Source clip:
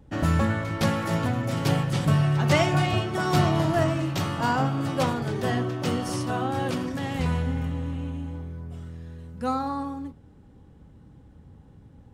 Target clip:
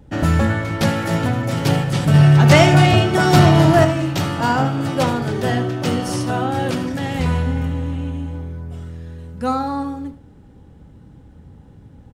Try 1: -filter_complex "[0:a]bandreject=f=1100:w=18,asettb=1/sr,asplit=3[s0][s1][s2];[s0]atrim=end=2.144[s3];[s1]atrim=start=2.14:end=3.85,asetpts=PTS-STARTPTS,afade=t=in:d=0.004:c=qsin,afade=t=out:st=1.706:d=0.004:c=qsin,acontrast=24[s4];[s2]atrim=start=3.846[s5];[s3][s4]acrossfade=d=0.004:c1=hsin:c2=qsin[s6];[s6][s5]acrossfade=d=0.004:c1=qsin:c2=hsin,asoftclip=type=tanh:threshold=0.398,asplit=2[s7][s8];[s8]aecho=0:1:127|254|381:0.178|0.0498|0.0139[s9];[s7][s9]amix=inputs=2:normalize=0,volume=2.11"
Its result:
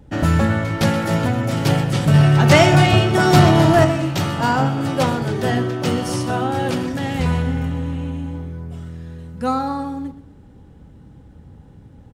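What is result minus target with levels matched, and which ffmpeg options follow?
echo 52 ms late
-filter_complex "[0:a]bandreject=f=1100:w=18,asettb=1/sr,asplit=3[s0][s1][s2];[s0]atrim=end=2.144[s3];[s1]atrim=start=2.14:end=3.85,asetpts=PTS-STARTPTS,afade=t=in:d=0.004:c=qsin,afade=t=out:st=1.706:d=0.004:c=qsin,acontrast=24[s4];[s2]atrim=start=3.846[s5];[s3][s4]acrossfade=d=0.004:c1=hsin:c2=qsin[s6];[s6][s5]acrossfade=d=0.004:c1=qsin:c2=hsin,asoftclip=type=tanh:threshold=0.398,asplit=2[s7][s8];[s8]aecho=0:1:75|150|225:0.178|0.0498|0.0139[s9];[s7][s9]amix=inputs=2:normalize=0,volume=2.11"

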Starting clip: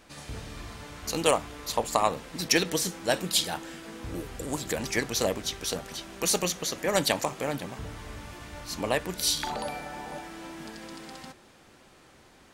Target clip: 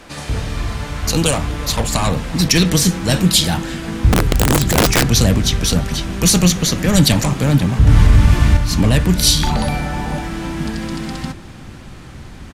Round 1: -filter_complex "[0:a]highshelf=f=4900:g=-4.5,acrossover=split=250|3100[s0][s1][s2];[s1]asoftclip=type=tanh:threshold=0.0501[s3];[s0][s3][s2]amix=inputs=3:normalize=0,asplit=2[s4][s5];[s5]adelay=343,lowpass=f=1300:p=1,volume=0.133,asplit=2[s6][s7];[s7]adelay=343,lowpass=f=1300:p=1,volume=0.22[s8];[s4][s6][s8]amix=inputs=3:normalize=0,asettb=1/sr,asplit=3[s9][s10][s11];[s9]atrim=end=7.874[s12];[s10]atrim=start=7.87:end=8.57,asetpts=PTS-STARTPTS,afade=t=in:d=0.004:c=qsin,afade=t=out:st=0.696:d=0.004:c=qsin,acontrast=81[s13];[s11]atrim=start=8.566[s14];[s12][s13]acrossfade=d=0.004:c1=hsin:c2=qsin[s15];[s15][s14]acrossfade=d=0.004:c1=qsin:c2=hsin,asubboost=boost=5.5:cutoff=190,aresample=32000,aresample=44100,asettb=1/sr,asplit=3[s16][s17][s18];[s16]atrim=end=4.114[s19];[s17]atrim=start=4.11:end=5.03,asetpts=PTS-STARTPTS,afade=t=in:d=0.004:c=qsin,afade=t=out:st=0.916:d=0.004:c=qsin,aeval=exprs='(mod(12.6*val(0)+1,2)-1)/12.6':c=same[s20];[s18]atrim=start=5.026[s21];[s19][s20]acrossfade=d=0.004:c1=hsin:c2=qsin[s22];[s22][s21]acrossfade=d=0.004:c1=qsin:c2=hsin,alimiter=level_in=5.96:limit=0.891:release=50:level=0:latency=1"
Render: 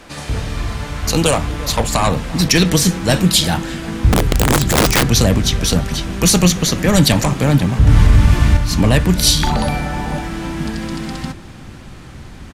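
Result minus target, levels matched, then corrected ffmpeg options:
saturation: distortion -4 dB
-filter_complex "[0:a]highshelf=f=4900:g=-4.5,acrossover=split=250|3100[s0][s1][s2];[s1]asoftclip=type=tanh:threshold=0.0237[s3];[s0][s3][s2]amix=inputs=3:normalize=0,asplit=2[s4][s5];[s5]adelay=343,lowpass=f=1300:p=1,volume=0.133,asplit=2[s6][s7];[s7]adelay=343,lowpass=f=1300:p=1,volume=0.22[s8];[s4][s6][s8]amix=inputs=3:normalize=0,asettb=1/sr,asplit=3[s9][s10][s11];[s9]atrim=end=7.874[s12];[s10]atrim=start=7.87:end=8.57,asetpts=PTS-STARTPTS,afade=t=in:d=0.004:c=qsin,afade=t=out:st=0.696:d=0.004:c=qsin,acontrast=81[s13];[s11]atrim=start=8.566[s14];[s12][s13]acrossfade=d=0.004:c1=hsin:c2=qsin[s15];[s15][s14]acrossfade=d=0.004:c1=qsin:c2=hsin,asubboost=boost=5.5:cutoff=190,aresample=32000,aresample=44100,asettb=1/sr,asplit=3[s16][s17][s18];[s16]atrim=end=4.114[s19];[s17]atrim=start=4.11:end=5.03,asetpts=PTS-STARTPTS,afade=t=in:d=0.004:c=qsin,afade=t=out:st=0.916:d=0.004:c=qsin,aeval=exprs='(mod(12.6*val(0)+1,2)-1)/12.6':c=same[s20];[s18]atrim=start=5.026[s21];[s19][s20]acrossfade=d=0.004:c1=hsin:c2=qsin[s22];[s22][s21]acrossfade=d=0.004:c1=qsin:c2=hsin,alimiter=level_in=5.96:limit=0.891:release=50:level=0:latency=1"

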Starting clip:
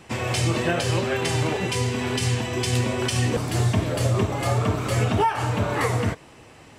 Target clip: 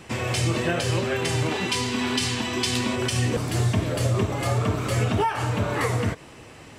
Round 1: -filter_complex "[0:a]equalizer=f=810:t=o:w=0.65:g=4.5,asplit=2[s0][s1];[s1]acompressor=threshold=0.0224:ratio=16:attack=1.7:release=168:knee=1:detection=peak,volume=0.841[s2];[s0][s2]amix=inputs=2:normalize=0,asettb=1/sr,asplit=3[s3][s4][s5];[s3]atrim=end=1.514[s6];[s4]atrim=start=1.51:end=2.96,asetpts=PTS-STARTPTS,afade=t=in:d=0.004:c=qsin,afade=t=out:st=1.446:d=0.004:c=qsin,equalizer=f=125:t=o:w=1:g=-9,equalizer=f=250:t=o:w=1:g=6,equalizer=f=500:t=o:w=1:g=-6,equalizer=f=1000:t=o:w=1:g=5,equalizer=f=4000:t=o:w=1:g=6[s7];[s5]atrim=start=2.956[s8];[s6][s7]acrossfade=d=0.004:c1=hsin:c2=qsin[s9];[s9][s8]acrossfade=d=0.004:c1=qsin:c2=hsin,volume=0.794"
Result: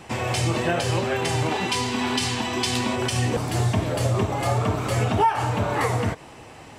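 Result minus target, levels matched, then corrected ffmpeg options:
1 kHz band +4.0 dB
-filter_complex "[0:a]equalizer=f=810:t=o:w=0.65:g=-2.5,asplit=2[s0][s1];[s1]acompressor=threshold=0.0224:ratio=16:attack=1.7:release=168:knee=1:detection=peak,volume=0.841[s2];[s0][s2]amix=inputs=2:normalize=0,asettb=1/sr,asplit=3[s3][s4][s5];[s3]atrim=end=1.514[s6];[s4]atrim=start=1.51:end=2.96,asetpts=PTS-STARTPTS,afade=t=in:d=0.004:c=qsin,afade=t=out:st=1.446:d=0.004:c=qsin,equalizer=f=125:t=o:w=1:g=-9,equalizer=f=250:t=o:w=1:g=6,equalizer=f=500:t=o:w=1:g=-6,equalizer=f=1000:t=o:w=1:g=5,equalizer=f=4000:t=o:w=1:g=6[s7];[s5]atrim=start=2.956[s8];[s6][s7]acrossfade=d=0.004:c1=hsin:c2=qsin[s9];[s9][s8]acrossfade=d=0.004:c1=qsin:c2=hsin,volume=0.794"

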